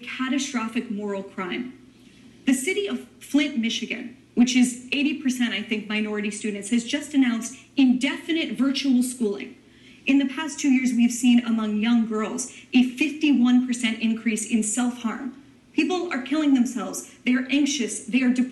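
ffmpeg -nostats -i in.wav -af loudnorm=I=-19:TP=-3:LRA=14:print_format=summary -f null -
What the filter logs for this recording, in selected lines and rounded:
Input Integrated:    -23.5 LUFS
Input True Peak:      -9.3 dBTP
Input LRA:             2.7 LU
Input Threshold:     -33.8 LUFS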